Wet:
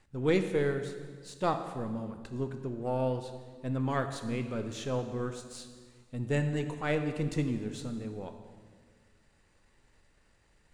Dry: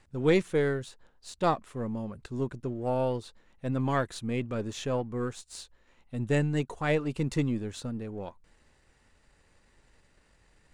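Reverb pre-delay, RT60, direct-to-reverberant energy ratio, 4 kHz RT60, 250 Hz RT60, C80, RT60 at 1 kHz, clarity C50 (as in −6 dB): 7 ms, 1.7 s, 7.0 dB, 1.5 s, 2.1 s, 9.5 dB, 1.6 s, 8.5 dB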